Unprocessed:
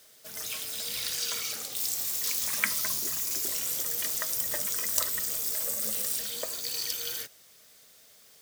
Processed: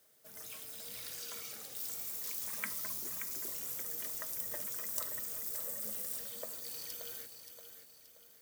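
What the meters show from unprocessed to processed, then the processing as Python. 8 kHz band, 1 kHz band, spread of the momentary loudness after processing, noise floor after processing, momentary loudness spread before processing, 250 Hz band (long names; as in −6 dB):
−12.0 dB, −9.5 dB, 13 LU, −60 dBFS, 6 LU, −7.5 dB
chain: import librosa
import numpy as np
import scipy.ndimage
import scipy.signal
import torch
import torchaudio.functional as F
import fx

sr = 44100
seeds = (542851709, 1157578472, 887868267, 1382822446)

y = scipy.signal.sosfilt(scipy.signal.butter(2, 57.0, 'highpass', fs=sr, output='sos'), x)
y = fx.peak_eq(y, sr, hz=4200.0, db=-8.0, octaves=2.4)
y = fx.echo_feedback(y, sr, ms=577, feedback_pct=43, wet_db=-9)
y = y * 10.0 ** (-8.0 / 20.0)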